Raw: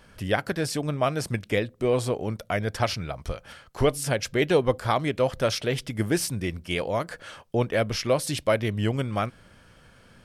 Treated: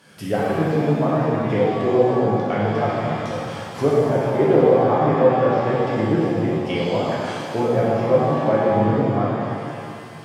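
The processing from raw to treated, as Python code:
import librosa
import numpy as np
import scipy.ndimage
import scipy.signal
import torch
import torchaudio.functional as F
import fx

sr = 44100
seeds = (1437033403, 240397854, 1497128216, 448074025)

y = fx.bass_treble(x, sr, bass_db=2, treble_db=4)
y = fx.env_lowpass_down(y, sr, base_hz=930.0, full_db=-22.0)
y = scipy.signal.sosfilt(scipy.signal.butter(4, 120.0, 'highpass', fs=sr, output='sos'), y)
y = fx.rev_shimmer(y, sr, seeds[0], rt60_s=2.2, semitones=7, shimmer_db=-8, drr_db=-6.5)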